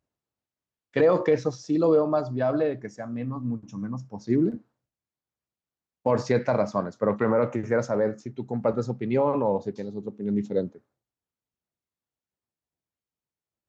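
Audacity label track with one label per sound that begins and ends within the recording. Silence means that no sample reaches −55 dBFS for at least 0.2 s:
0.930000	4.620000	sound
6.050000	10.790000	sound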